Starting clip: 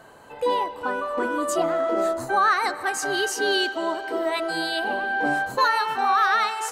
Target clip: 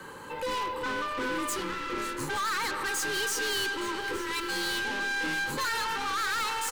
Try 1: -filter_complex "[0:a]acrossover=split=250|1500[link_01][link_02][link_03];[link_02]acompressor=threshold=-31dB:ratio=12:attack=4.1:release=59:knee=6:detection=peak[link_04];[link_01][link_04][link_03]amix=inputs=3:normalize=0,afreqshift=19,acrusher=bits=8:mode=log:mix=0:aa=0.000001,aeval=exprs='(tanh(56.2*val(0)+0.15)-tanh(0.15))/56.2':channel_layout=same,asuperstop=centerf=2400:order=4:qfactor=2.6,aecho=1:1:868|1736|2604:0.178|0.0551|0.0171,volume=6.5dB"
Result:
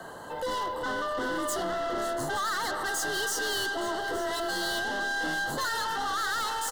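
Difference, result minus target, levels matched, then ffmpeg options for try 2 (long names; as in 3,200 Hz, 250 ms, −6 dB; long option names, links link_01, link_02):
500 Hz band +3.5 dB
-filter_complex "[0:a]acrossover=split=250|1500[link_01][link_02][link_03];[link_02]acompressor=threshold=-31dB:ratio=12:attack=4.1:release=59:knee=6:detection=peak[link_04];[link_01][link_04][link_03]amix=inputs=3:normalize=0,afreqshift=19,acrusher=bits=8:mode=log:mix=0:aa=0.000001,aeval=exprs='(tanh(56.2*val(0)+0.15)-tanh(0.15))/56.2':channel_layout=same,asuperstop=centerf=680:order=4:qfactor=2.6,aecho=1:1:868|1736|2604:0.178|0.0551|0.0171,volume=6.5dB"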